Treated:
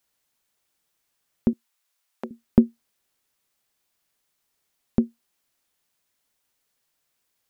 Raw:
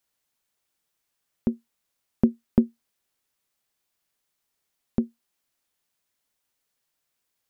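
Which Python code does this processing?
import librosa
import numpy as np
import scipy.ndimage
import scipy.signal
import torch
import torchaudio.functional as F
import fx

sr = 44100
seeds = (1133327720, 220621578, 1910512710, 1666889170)

y = fx.highpass(x, sr, hz=770.0, slope=12, at=(1.53, 2.31))
y = y * librosa.db_to_amplitude(3.5)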